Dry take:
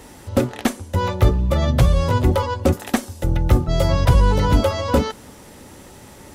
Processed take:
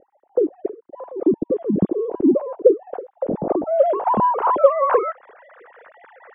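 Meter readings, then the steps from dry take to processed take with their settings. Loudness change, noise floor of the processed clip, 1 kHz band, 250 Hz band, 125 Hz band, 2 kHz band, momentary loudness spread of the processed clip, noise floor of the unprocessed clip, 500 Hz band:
-0.5 dB, -64 dBFS, +4.0 dB, +0.5 dB, -17.5 dB, -8.5 dB, 15 LU, -43 dBFS, +5.0 dB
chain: formants replaced by sine waves; low-pass sweep 350 Hz -> 1.7 kHz, 2.16–5.38 s; trim -5.5 dB

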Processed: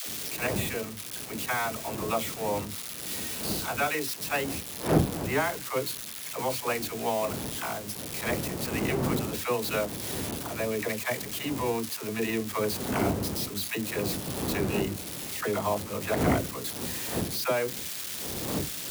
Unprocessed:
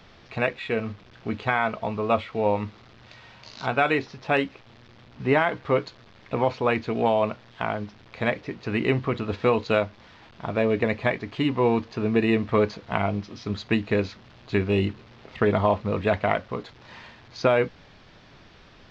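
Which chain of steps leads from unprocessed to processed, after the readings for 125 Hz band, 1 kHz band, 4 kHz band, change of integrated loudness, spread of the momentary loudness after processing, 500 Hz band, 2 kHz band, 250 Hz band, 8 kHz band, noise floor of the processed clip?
-3.5 dB, -5.5 dB, +3.0 dB, -4.5 dB, 6 LU, -6.5 dB, -4.5 dB, -4.5 dB, no reading, -39 dBFS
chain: zero-crossing glitches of -19.5 dBFS; wind noise 300 Hz -25 dBFS; high-pass 72 Hz; bass shelf 470 Hz -5.5 dB; phase dispersion lows, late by 76 ms, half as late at 450 Hz; trim -5 dB

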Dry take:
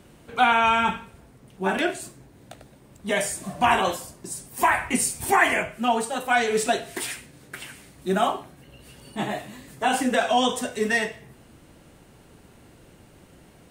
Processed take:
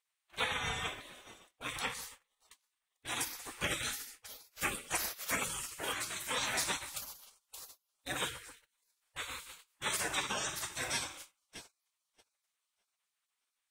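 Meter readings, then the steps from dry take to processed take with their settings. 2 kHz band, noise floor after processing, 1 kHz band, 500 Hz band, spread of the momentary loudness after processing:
-13.0 dB, under -85 dBFS, -19.5 dB, -20.0 dB, 18 LU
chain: two-band feedback delay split 1.6 kHz, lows 133 ms, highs 619 ms, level -14 dB; gate -39 dBFS, range -25 dB; spectral gate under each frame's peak -20 dB weak; dynamic bell 2.9 kHz, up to -7 dB, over -54 dBFS, Q 6.6

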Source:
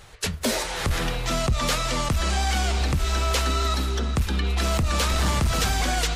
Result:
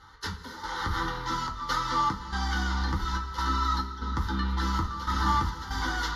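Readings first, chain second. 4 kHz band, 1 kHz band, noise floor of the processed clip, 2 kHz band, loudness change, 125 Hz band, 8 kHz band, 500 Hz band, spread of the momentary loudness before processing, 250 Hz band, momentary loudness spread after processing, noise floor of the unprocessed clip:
-8.5 dB, +0.5 dB, -43 dBFS, -4.0 dB, -5.5 dB, -7.5 dB, -15.0 dB, -14.0 dB, 3 LU, -5.0 dB, 7 LU, -32 dBFS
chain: low-pass 11 kHz 12 dB/octave; peaking EQ 950 Hz +15 dB 1.2 oct; static phaser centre 2.5 kHz, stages 6; comb of notches 560 Hz; trance gate "xx.xxxx." 71 bpm -12 dB; two-slope reverb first 0.22 s, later 1.9 s, from -18 dB, DRR 0 dB; trim -7.5 dB

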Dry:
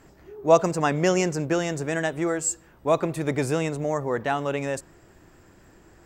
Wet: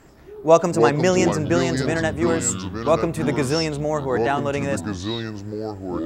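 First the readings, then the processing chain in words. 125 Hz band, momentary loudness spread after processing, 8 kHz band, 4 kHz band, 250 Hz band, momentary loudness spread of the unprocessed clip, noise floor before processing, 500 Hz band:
+5.0 dB, 12 LU, +3.0 dB, +7.5 dB, +5.5 dB, 8 LU, -55 dBFS, +4.0 dB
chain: ever faster or slower copies 87 ms, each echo -6 st, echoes 2, each echo -6 dB; trim +3 dB

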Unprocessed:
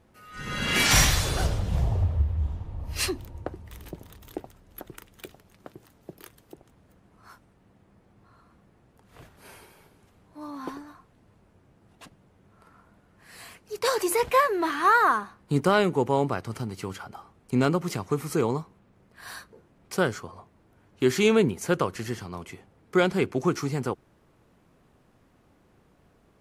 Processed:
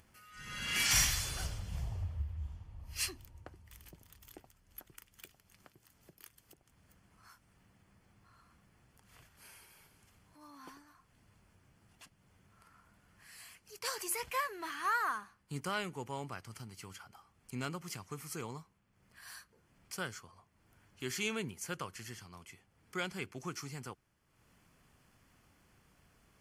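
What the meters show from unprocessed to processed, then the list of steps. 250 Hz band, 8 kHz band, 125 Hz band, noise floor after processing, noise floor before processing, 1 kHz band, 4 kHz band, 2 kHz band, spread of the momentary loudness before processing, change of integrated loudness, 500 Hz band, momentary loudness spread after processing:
-18.5 dB, -6.0 dB, -15.0 dB, -72 dBFS, -62 dBFS, -14.0 dB, -8.5 dB, -10.5 dB, 21 LU, -12.5 dB, -20.5 dB, 23 LU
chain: upward compressor, threshold -41 dBFS; amplifier tone stack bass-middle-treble 5-5-5; band-stop 3.8 kHz, Q 6.6

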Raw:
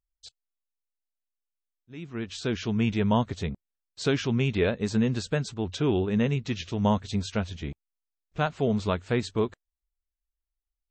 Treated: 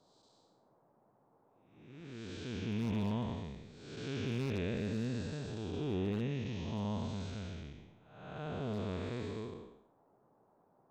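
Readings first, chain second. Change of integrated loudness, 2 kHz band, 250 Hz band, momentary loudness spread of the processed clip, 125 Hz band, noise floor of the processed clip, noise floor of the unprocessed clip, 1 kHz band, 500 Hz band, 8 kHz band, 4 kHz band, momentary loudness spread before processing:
-11.0 dB, -13.0 dB, -11.0 dB, 15 LU, -9.5 dB, -71 dBFS, under -85 dBFS, -14.5 dB, -12.5 dB, -14.0 dB, -12.0 dB, 11 LU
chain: spectral blur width 406 ms; wavefolder -20 dBFS; band noise 110–940 Hz -63 dBFS; trim -7 dB

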